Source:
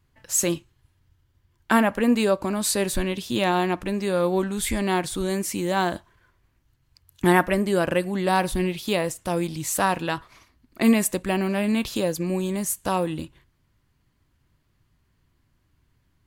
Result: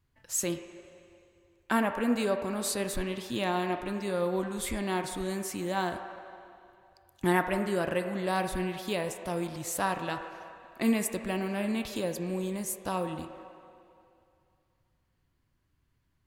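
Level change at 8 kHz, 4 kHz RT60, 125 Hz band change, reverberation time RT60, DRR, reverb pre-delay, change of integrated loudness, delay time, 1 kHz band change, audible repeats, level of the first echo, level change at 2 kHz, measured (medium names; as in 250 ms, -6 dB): -8.0 dB, 2.3 s, -8.0 dB, 2.5 s, 6.5 dB, 5 ms, -7.5 dB, no echo, -7.0 dB, no echo, no echo, -7.0 dB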